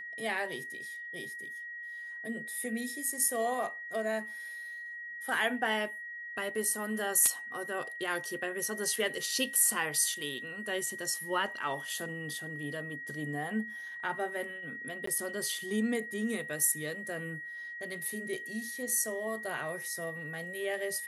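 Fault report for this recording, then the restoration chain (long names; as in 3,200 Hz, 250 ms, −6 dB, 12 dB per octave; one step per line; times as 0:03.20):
whistle 1,900 Hz −40 dBFS
0:15.06–0:15.07: drop-out 14 ms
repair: notch filter 1,900 Hz, Q 30
repair the gap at 0:15.06, 14 ms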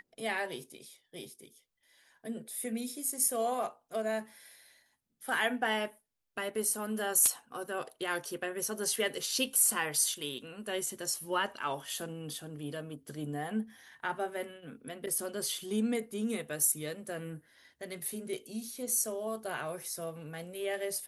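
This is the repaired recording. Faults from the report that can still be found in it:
none of them is left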